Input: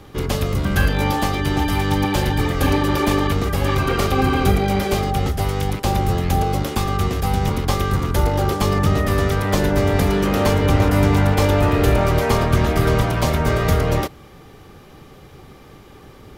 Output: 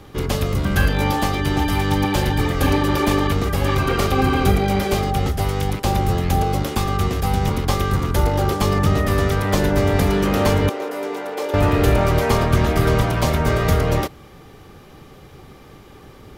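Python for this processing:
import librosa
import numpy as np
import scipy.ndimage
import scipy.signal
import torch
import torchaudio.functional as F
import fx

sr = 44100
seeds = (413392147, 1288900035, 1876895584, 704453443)

y = fx.ladder_highpass(x, sr, hz=340.0, resonance_pct=45, at=(10.69, 11.54))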